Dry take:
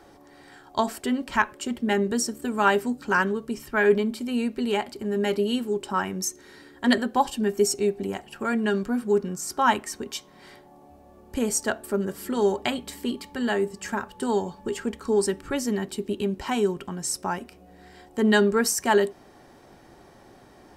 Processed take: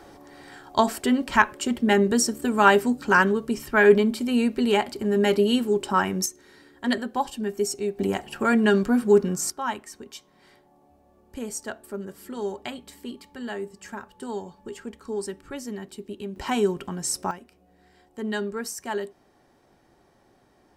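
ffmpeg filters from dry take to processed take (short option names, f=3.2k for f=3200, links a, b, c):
-af "asetnsamples=n=441:p=0,asendcmd='6.26 volume volume -4dB;7.99 volume volume 5dB;9.5 volume volume -8dB;16.36 volume volume 1dB;17.31 volume volume -9.5dB',volume=4dB"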